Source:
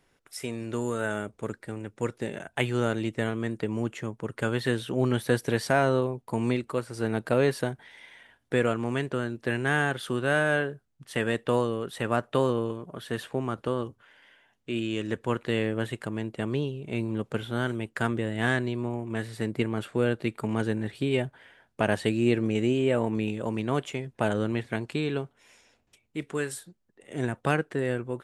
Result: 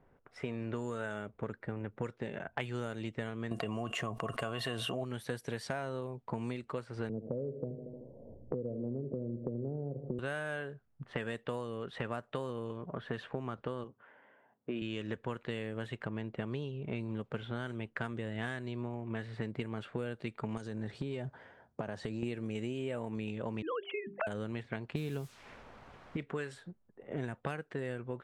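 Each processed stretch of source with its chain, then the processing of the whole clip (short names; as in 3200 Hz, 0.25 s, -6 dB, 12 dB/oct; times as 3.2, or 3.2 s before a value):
3.51–5.04 small resonant body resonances 690/1100/2800 Hz, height 17 dB + fast leveller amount 70%
7.09–10.19 elliptic low-pass 550 Hz, stop band 70 dB + feedback echo 76 ms, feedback 52%, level -13 dB + three-band squash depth 70%
13.84–14.82 HPF 180 Hz + high shelf 2500 Hz -10 dB
20.57–22.23 HPF 56 Hz + resonant high shelf 3900 Hz +13 dB, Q 1.5 + compressor, threshold -31 dBFS
23.62–24.27 sine-wave speech + notches 50/100/150/200/250/300/350/400 Hz
24.95–26.17 low shelf 290 Hz +10 dB + requantised 8-bit, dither triangular
whole clip: low-pass opened by the level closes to 990 Hz, open at -21 dBFS; bell 320 Hz -4.5 dB 0.47 oct; compressor 8:1, threshold -39 dBFS; gain +4.5 dB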